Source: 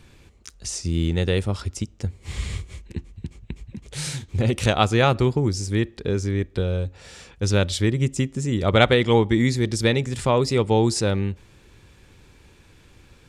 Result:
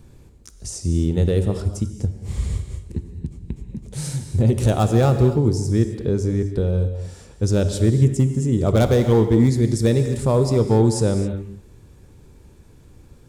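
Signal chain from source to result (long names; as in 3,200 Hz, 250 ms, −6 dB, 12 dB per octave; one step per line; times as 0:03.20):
hard clipping −13 dBFS, distortion −15 dB
parametric band 2,600 Hz −15 dB 2.6 octaves
reverb whose tail is shaped and stops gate 290 ms flat, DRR 7.5 dB
level +4.5 dB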